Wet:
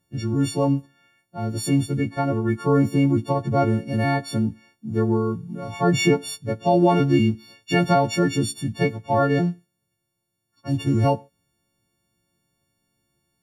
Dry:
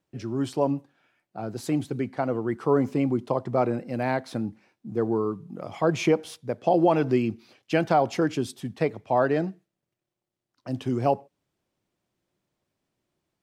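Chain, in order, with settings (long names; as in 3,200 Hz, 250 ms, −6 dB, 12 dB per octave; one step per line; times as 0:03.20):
every partial snapped to a pitch grid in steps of 4 semitones
bass and treble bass +12 dB, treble −2 dB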